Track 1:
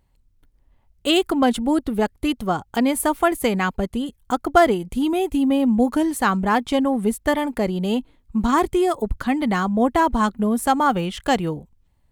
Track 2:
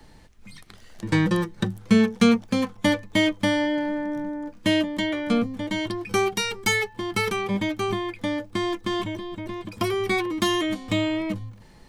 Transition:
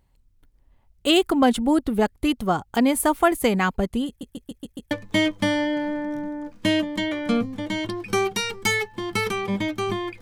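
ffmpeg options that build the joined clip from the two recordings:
-filter_complex "[0:a]apad=whole_dur=10.21,atrim=end=10.21,asplit=6[s0][s1][s2][s3][s4][s5];[s0]atrim=end=4.212[s6];[s1]atrim=start=4.068:end=4.212[s7];[s2]atrim=start=4.068:end=4.212[s8];[s3]atrim=start=4.068:end=4.212[s9];[s4]atrim=start=4.068:end=4.212[s10];[s5]atrim=start=4.068:end=4.212[s11];[1:a]atrim=start=2.918:end=8.22[s12];[s6][s7]acrossfade=d=0.004:c1=hsin:c2=hsin[s13];[s13][s8]acrossfade=d=0.004:c1=hsin:c2=hsin[s14];[s14][s9]acrossfade=d=0.004:c1=hsin:c2=hsin[s15];[s15][s10]acrossfade=d=0.004:c1=hsin:c2=hsin[s16];[s16][s11]acrossfade=d=0.004:c1=hsin:c2=hsin[s17];[s17][s12]acrossfade=d=0.004:c1=hsin:c2=hsin"

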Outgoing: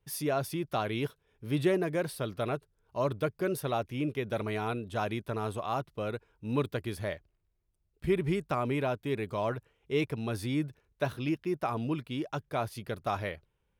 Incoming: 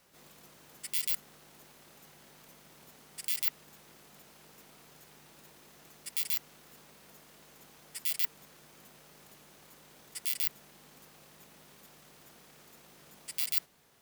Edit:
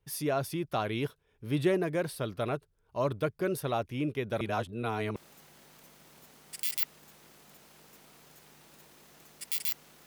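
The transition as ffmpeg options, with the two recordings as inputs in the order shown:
-filter_complex "[0:a]apad=whole_dur=10.06,atrim=end=10.06,asplit=2[s0][s1];[s0]atrim=end=4.412[s2];[s1]atrim=start=4.408:end=5.162,asetpts=PTS-STARTPTS,areverse[s3];[1:a]atrim=start=1.808:end=6.71[s4];[s2][s3]acrossfade=d=0.004:c1=hsin:c2=hsin[s5];[s5][s4]acrossfade=d=0.004:c1=hsin:c2=hsin"

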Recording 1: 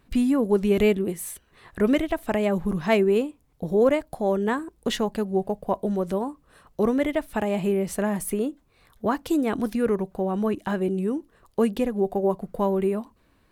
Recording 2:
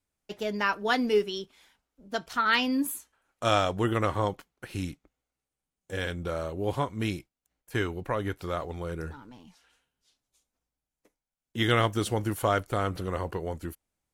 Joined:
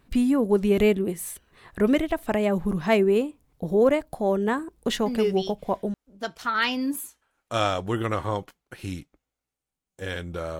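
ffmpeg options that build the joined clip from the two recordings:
-filter_complex "[0:a]apad=whole_dur=10.59,atrim=end=10.59,atrim=end=5.94,asetpts=PTS-STARTPTS[s0];[1:a]atrim=start=0.97:end=6.5,asetpts=PTS-STARTPTS[s1];[s0][s1]acrossfade=d=0.88:c1=log:c2=log"

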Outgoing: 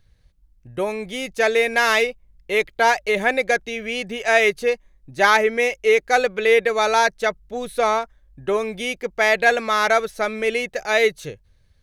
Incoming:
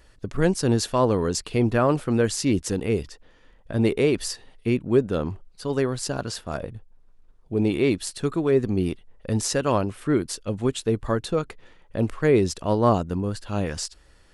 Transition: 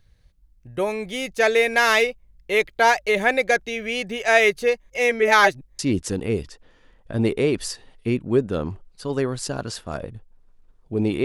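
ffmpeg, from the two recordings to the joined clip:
-filter_complex "[0:a]apad=whole_dur=11.24,atrim=end=11.24,asplit=2[s0][s1];[s0]atrim=end=4.902[s2];[s1]atrim=start=4.898:end=5.792,asetpts=PTS-STARTPTS,areverse[s3];[1:a]atrim=start=2.388:end=7.84[s4];[s2][s3]acrossfade=d=0.004:c1=hsin:c2=hsin[s5];[s5][s4]acrossfade=d=0.004:c1=hsin:c2=hsin"

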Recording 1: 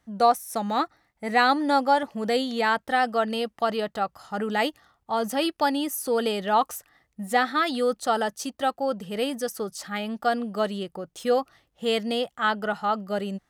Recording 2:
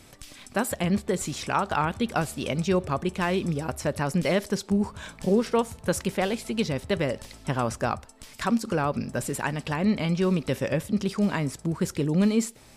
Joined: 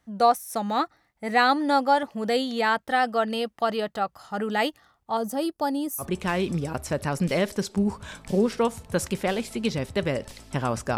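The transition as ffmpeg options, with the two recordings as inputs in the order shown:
-filter_complex "[0:a]asettb=1/sr,asplit=3[s0][s1][s2];[s0]atrim=end=5.174[s3];[s1]atrim=start=5.17:end=6.06,asetpts=PTS-STARTPTS,afade=t=in:d=0.004:c=qsin,afade=t=out:st=0.886:d=0.004:c=qsin,equalizer=f=2400:t=o:w=1.9:g=-13[s4];[s2]atrim=start=6.056[s5];[s3][s4]acrossfade=d=0.004:c1=hsin:c2=qsin[s6];[s6][s5]acrossfade=d=0.004:c1=qsin:c2=hsin,apad=whole_dur=10.97,atrim=end=10.97,atrim=end=6.06,asetpts=PTS-STARTPTS[s7];[1:a]atrim=start=2.92:end=7.91,asetpts=PTS-STARTPTS[s8];[s7][s8]acrossfade=d=0.08:c1=tri:c2=tri"

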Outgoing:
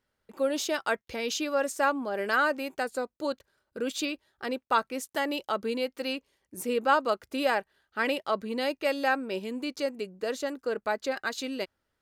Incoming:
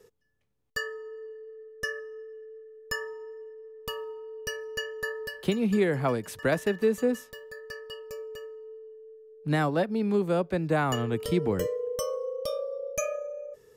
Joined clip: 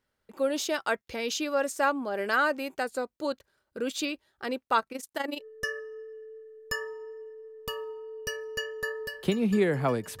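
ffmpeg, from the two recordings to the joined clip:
-filter_complex "[0:a]asplit=3[s0][s1][s2];[s0]afade=t=out:st=4.79:d=0.02[s3];[s1]tremolo=f=24:d=0.788,afade=t=in:st=4.79:d=0.02,afade=t=out:st=5.45:d=0.02[s4];[s2]afade=t=in:st=5.45:d=0.02[s5];[s3][s4][s5]amix=inputs=3:normalize=0,apad=whole_dur=10.2,atrim=end=10.2,atrim=end=5.45,asetpts=PTS-STARTPTS[s6];[1:a]atrim=start=1.55:end=6.4,asetpts=PTS-STARTPTS[s7];[s6][s7]acrossfade=d=0.1:c1=tri:c2=tri"

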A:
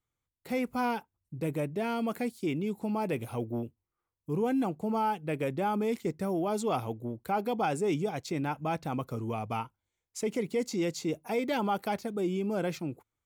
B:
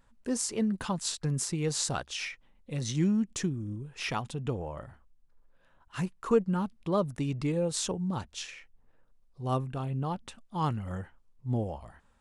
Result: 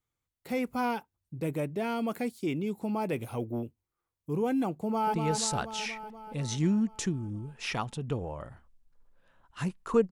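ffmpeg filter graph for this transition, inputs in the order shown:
-filter_complex "[0:a]apad=whole_dur=10.11,atrim=end=10.11,atrim=end=5.142[s0];[1:a]atrim=start=1.508:end=6.48[s1];[s0][s1]acrossfade=d=0.004:c1=hsin:c2=hsin,asplit=2[s2][s3];[s3]afade=t=in:st=4.78:d=0.01,afade=t=out:st=5.14:d=0.01,aecho=0:1:240|480|720|960|1200|1440|1680|1920|2160|2400|2640|2880:0.530884|0.371619|0.260133|0.182093|0.127465|0.0892257|0.062458|0.0437206|0.0306044|0.0214231|0.0149962|0.0104973[s4];[s2][s4]amix=inputs=2:normalize=0"

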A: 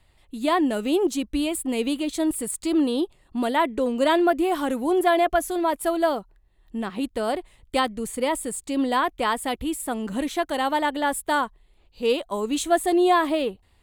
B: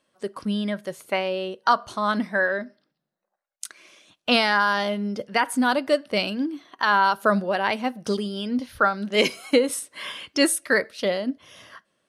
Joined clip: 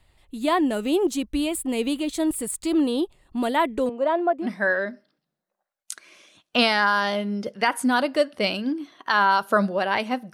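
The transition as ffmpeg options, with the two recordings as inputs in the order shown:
-filter_complex "[0:a]asettb=1/sr,asplit=3[s0][s1][s2];[s0]atrim=end=3.894[s3];[s1]atrim=start=3.89:end=4.49,asetpts=PTS-STARTPTS,afade=t=in:d=0.004:c=qsin,afade=t=out:st=0.596:d=0.004:c=qsin,bandpass=f=690:t=q:w=1.2:csg=0[s4];[s2]atrim=start=4.486[s5];[s3][s4]acrossfade=d=0.004:c1=hsin:c2=qsin[s6];[s6][s5]acrossfade=d=0.004:c1=qsin:c2=hsin,apad=whole_dur=10.33,atrim=end=10.33,atrim=end=4.49,asetpts=PTS-STARTPTS[s7];[1:a]atrim=start=2.14:end=8.06,asetpts=PTS-STARTPTS[s8];[s7][s8]acrossfade=d=0.08:c1=tri:c2=tri"

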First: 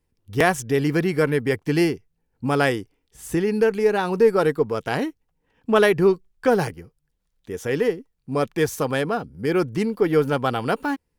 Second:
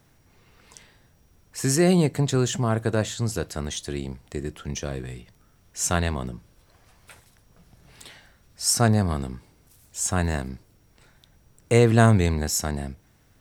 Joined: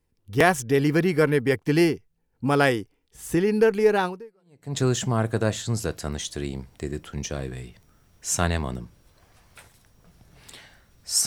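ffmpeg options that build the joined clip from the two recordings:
-filter_complex "[0:a]apad=whole_dur=11.26,atrim=end=11.26,atrim=end=4.77,asetpts=PTS-STARTPTS[s0];[1:a]atrim=start=1.57:end=8.78,asetpts=PTS-STARTPTS[s1];[s0][s1]acrossfade=d=0.72:c1=exp:c2=exp"

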